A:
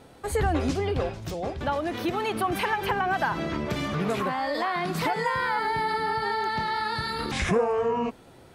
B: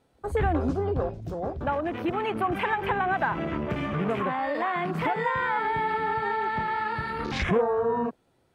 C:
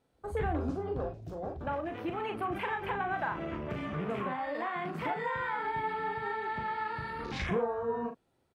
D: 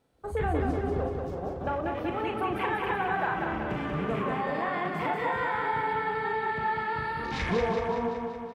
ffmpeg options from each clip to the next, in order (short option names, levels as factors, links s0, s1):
-af "afwtdn=0.0178"
-filter_complex "[0:a]asplit=2[s0][s1];[s1]adelay=39,volume=0.473[s2];[s0][s2]amix=inputs=2:normalize=0,volume=0.398"
-af "aecho=1:1:188|376|564|752|940|1128|1316|1504|1692:0.631|0.379|0.227|0.136|0.0818|0.0491|0.0294|0.0177|0.0106,volume=1.41"